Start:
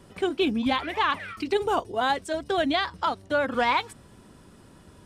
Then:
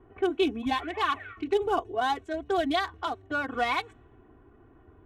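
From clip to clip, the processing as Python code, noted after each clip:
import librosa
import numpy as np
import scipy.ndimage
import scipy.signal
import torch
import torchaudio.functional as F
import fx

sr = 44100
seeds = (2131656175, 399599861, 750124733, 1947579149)

y = fx.wiener(x, sr, points=9)
y = fx.env_lowpass(y, sr, base_hz=1600.0, full_db=-22.0)
y = y + 0.89 * np.pad(y, (int(2.7 * sr / 1000.0), 0))[:len(y)]
y = y * 10.0 ** (-5.5 / 20.0)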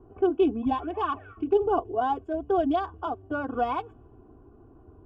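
y = scipy.signal.lfilter(np.full(22, 1.0 / 22), 1.0, x)
y = y * 10.0 ** (4.0 / 20.0)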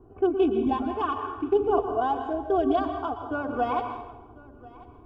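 y = x + 10.0 ** (-22.0 / 20.0) * np.pad(x, (int(1041 * sr / 1000.0), 0))[:len(x)]
y = fx.rev_plate(y, sr, seeds[0], rt60_s=1.0, hf_ratio=0.75, predelay_ms=105, drr_db=5.5)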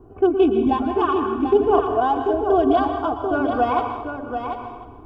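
y = x + 10.0 ** (-7.0 / 20.0) * np.pad(x, (int(739 * sr / 1000.0), 0))[:len(x)]
y = y * 10.0 ** (6.0 / 20.0)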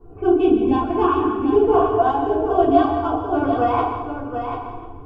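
y = fx.room_shoebox(x, sr, seeds[1], volume_m3=160.0, walls='furnished', distance_m=4.3)
y = y * 10.0 ** (-8.5 / 20.0)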